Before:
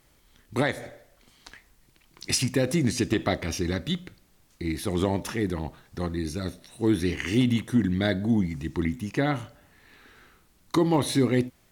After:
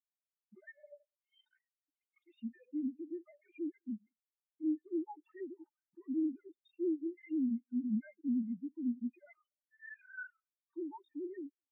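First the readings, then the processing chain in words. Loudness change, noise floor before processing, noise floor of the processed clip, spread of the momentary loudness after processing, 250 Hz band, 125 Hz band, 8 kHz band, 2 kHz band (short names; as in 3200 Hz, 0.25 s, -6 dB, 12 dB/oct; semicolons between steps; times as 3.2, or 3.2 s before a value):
-12.5 dB, -62 dBFS, under -85 dBFS, 19 LU, -11.0 dB, under -25 dB, under -40 dB, under -15 dB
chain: sine-wave speech; recorder AGC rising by 37 dB/s; bell 500 Hz -12 dB 1.9 oct; notch 540 Hz, Q 12; comb 3.3 ms, depth 73%; compressor, threshold -27 dBFS, peak gain reduction 12 dB; limiter -25.5 dBFS, peak gain reduction 9 dB; soft clip -33.5 dBFS, distortion -12 dB; echo 0.206 s -16.5 dB; spectral expander 4:1; gain +6 dB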